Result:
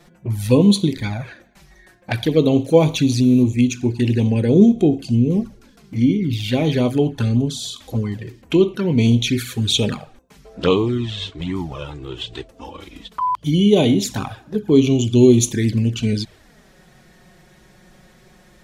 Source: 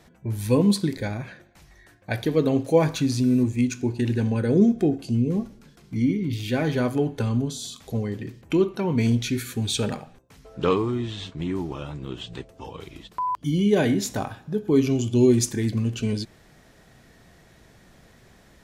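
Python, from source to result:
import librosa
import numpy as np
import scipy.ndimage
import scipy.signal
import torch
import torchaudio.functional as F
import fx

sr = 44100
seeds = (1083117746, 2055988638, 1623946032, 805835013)

y = fx.dynamic_eq(x, sr, hz=3400.0, q=1.6, threshold_db=-49.0, ratio=4.0, max_db=6)
y = fx.env_flanger(y, sr, rest_ms=6.0, full_db=-19.0)
y = y * 10.0 ** (6.5 / 20.0)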